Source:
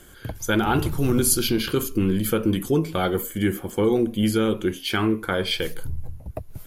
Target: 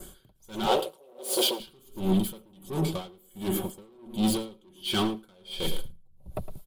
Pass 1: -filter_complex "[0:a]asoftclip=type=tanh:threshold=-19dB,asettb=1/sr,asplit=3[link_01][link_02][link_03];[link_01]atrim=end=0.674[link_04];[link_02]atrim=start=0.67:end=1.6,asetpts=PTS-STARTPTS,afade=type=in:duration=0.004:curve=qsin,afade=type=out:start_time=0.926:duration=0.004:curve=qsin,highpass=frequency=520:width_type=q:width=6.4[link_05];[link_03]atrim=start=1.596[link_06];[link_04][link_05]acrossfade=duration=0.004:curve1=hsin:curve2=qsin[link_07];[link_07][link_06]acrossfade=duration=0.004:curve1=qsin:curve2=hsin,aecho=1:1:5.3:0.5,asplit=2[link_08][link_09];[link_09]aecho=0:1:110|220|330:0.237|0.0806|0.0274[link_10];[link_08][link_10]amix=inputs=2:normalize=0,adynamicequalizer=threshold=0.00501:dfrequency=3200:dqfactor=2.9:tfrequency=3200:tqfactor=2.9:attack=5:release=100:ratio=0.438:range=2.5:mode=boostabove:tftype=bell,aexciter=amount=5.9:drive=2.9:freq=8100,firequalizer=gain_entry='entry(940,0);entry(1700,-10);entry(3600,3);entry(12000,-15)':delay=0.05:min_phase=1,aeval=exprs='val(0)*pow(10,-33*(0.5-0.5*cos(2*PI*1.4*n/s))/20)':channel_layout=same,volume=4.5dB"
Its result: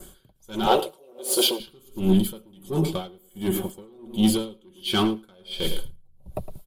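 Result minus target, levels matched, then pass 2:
soft clipping: distortion −6 dB
-filter_complex "[0:a]asoftclip=type=tanh:threshold=-27dB,asettb=1/sr,asplit=3[link_01][link_02][link_03];[link_01]atrim=end=0.674[link_04];[link_02]atrim=start=0.67:end=1.6,asetpts=PTS-STARTPTS,afade=type=in:duration=0.004:curve=qsin,afade=type=out:start_time=0.926:duration=0.004:curve=qsin,highpass=frequency=520:width_type=q:width=6.4[link_05];[link_03]atrim=start=1.596[link_06];[link_04][link_05]acrossfade=duration=0.004:curve1=hsin:curve2=qsin[link_07];[link_07][link_06]acrossfade=duration=0.004:curve1=qsin:curve2=hsin,aecho=1:1:5.3:0.5,asplit=2[link_08][link_09];[link_09]aecho=0:1:110|220|330:0.237|0.0806|0.0274[link_10];[link_08][link_10]amix=inputs=2:normalize=0,adynamicequalizer=threshold=0.00501:dfrequency=3200:dqfactor=2.9:tfrequency=3200:tqfactor=2.9:attack=5:release=100:ratio=0.438:range=2.5:mode=boostabove:tftype=bell,aexciter=amount=5.9:drive=2.9:freq=8100,firequalizer=gain_entry='entry(940,0);entry(1700,-10);entry(3600,3);entry(12000,-15)':delay=0.05:min_phase=1,aeval=exprs='val(0)*pow(10,-33*(0.5-0.5*cos(2*PI*1.4*n/s))/20)':channel_layout=same,volume=4.5dB"

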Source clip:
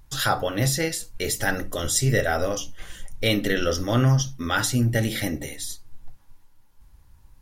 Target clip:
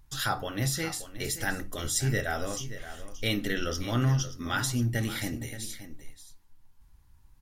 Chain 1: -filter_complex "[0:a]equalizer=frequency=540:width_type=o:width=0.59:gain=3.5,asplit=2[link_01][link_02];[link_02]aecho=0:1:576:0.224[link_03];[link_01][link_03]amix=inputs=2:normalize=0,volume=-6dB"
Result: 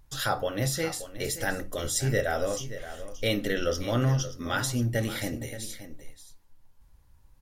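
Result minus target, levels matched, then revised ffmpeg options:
500 Hz band +5.5 dB
-filter_complex "[0:a]equalizer=frequency=540:width_type=o:width=0.59:gain=-6,asplit=2[link_01][link_02];[link_02]aecho=0:1:576:0.224[link_03];[link_01][link_03]amix=inputs=2:normalize=0,volume=-6dB"

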